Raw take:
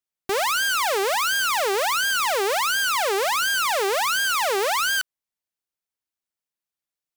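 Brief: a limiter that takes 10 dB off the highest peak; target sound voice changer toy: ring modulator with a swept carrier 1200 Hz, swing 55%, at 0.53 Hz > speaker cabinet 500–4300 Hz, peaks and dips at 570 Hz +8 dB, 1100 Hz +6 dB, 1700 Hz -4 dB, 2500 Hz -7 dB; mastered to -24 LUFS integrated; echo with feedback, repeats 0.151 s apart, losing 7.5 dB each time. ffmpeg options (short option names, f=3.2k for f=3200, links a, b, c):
-af "alimiter=level_in=3.5dB:limit=-24dB:level=0:latency=1,volume=-3.5dB,aecho=1:1:151|302|453|604|755:0.422|0.177|0.0744|0.0312|0.0131,aeval=exprs='val(0)*sin(2*PI*1200*n/s+1200*0.55/0.53*sin(2*PI*0.53*n/s))':c=same,highpass=500,equalizer=f=570:t=q:w=4:g=8,equalizer=f=1.1k:t=q:w=4:g=6,equalizer=f=1.7k:t=q:w=4:g=-4,equalizer=f=2.5k:t=q:w=4:g=-7,lowpass=f=4.3k:w=0.5412,lowpass=f=4.3k:w=1.3066,volume=11.5dB"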